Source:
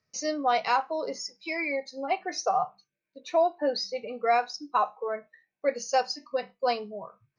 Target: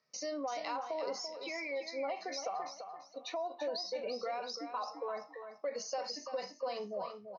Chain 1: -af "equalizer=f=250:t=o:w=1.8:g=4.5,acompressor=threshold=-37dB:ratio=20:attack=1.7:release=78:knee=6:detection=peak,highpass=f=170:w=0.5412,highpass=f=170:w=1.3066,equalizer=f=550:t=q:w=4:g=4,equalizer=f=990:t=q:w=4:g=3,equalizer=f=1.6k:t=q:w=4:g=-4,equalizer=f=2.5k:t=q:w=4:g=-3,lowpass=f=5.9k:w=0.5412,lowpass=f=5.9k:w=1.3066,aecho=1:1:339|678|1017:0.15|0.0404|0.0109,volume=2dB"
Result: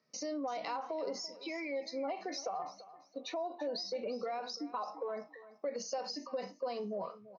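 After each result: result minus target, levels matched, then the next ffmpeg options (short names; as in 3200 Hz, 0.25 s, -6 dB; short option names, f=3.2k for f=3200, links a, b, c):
echo-to-direct -8 dB; 250 Hz band +5.0 dB
-af "equalizer=f=250:t=o:w=1.8:g=4.5,acompressor=threshold=-37dB:ratio=20:attack=1.7:release=78:knee=6:detection=peak,highpass=f=170:w=0.5412,highpass=f=170:w=1.3066,equalizer=f=550:t=q:w=4:g=4,equalizer=f=990:t=q:w=4:g=3,equalizer=f=1.6k:t=q:w=4:g=-4,equalizer=f=2.5k:t=q:w=4:g=-3,lowpass=f=5.9k:w=0.5412,lowpass=f=5.9k:w=1.3066,aecho=1:1:339|678|1017:0.376|0.101|0.0274,volume=2dB"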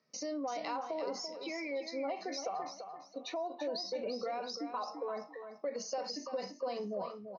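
250 Hz band +5.0 dB
-af "equalizer=f=250:t=o:w=1.8:g=-6,acompressor=threshold=-37dB:ratio=20:attack=1.7:release=78:knee=6:detection=peak,highpass=f=170:w=0.5412,highpass=f=170:w=1.3066,equalizer=f=550:t=q:w=4:g=4,equalizer=f=990:t=q:w=4:g=3,equalizer=f=1.6k:t=q:w=4:g=-4,equalizer=f=2.5k:t=q:w=4:g=-3,lowpass=f=5.9k:w=0.5412,lowpass=f=5.9k:w=1.3066,aecho=1:1:339|678|1017:0.376|0.101|0.0274,volume=2dB"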